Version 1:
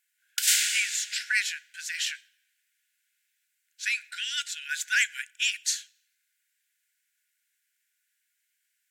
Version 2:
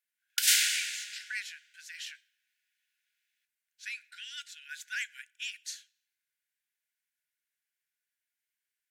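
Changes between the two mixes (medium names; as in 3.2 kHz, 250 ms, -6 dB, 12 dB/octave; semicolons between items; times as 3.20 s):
speech -11.5 dB; master: add peaking EQ 7.5 kHz -4.5 dB 0.38 oct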